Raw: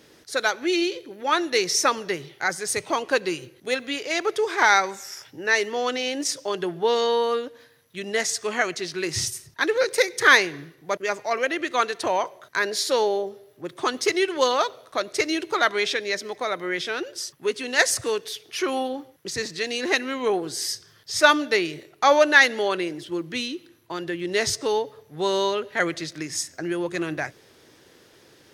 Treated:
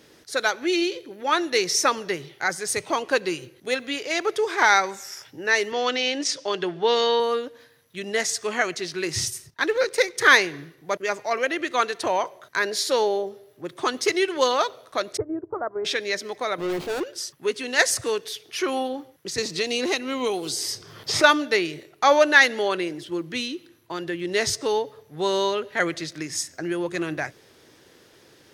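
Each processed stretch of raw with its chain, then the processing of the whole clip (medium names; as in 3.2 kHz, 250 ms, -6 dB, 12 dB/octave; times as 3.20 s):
5.72–7.20 s: band-pass 130–4500 Hz + treble shelf 2.2 kHz +8 dB
9.50–10.18 s: companding laws mixed up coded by A + treble shelf 9.9 kHz -7.5 dB
15.17–15.85 s: resonant low shelf 140 Hz +7 dB, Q 3 + transient shaper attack -1 dB, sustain -8 dB + Bessel low-pass 710 Hz, order 8
16.58–17.04 s: median filter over 25 samples + waveshaping leveller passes 2
19.38–21.24 s: peaking EQ 1.7 kHz -10 dB 0.35 oct + three bands compressed up and down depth 100%
whole clip: none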